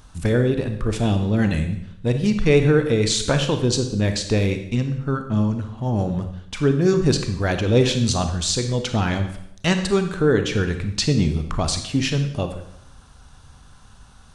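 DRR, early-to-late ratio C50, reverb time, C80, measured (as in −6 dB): 7.0 dB, 8.5 dB, 0.75 s, 11.0 dB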